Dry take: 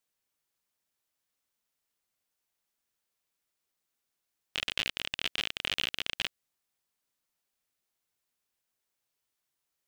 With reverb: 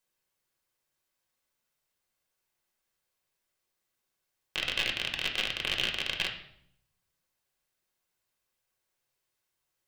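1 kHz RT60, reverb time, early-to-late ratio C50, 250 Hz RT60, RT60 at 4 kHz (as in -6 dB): 0.65 s, 0.70 s, 8.5 dB, 0.90 s, 0.60 s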